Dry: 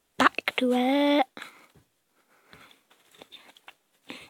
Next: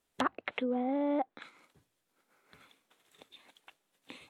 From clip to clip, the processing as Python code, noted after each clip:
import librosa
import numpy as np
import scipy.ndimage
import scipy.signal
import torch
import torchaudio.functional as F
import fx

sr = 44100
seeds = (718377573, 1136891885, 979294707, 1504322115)

y = fx.env_lowpass_down(x, sr, base_hz=1100.0, full_db=-20.5)
y = F.gain(torch.from_numpy(y), -8.0).numpy()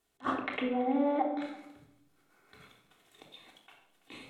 y = x + 10.0 ** (-22.0 / 20.0) * np.pad(x, (int(333 * sr / 1000.0), 0))[:len(x)]
y = fx.room_shoebox(y, sr, seeds[0], volume_m3=2000.0, walls='furnished', distance_m=3.4)
y = fx.attack_slew(y, sr, db_per_s=430.0)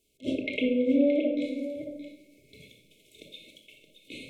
y = fx.brickwall_bandstop(x, sr, low_hz=650.0, high_hz=2100.0)
y = y + 10.0 ** (-11.5 / 20.0) * np.pad(y, (int(622 * sr / 1000.0), 0))[:len(y)]
y = F.gain(torch.from_numpy(y), 6.5).numpy()